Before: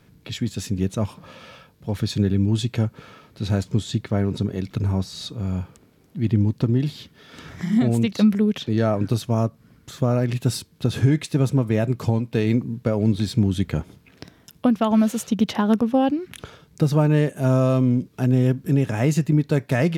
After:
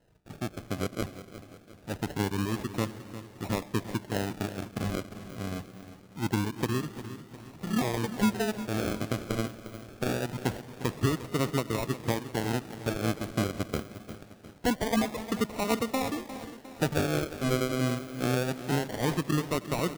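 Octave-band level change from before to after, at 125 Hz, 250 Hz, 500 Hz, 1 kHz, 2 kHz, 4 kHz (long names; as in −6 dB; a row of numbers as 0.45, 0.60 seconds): −12.5, −10.0, −6.5, −3.0, −1.0, −4.0 decibels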